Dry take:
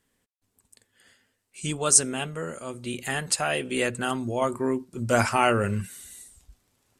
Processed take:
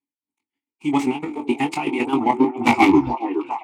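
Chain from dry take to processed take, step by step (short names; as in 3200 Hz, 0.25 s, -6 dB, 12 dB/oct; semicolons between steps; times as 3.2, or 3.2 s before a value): tape stop at the end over 1.80 s; high shelf 9100 Hz +9 dB; in parallel at +1 dB: level quantiser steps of 11 dB; on the sum: sample leveller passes 5; time stretch by phase-locked vocoder 0.52×; wrapped overs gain -7 dB; chopper 7.5 Hz, depth 60%, duty 35%; vowel filter u; doubler 21 ms -6.5 dB; on a send: delay with a stepping band-pass 0.42 s, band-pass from 480 Hz, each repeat 0.7 oct, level -4 dB; on the sum: record warp 45 rpm, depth 100 cents; gain +2 dB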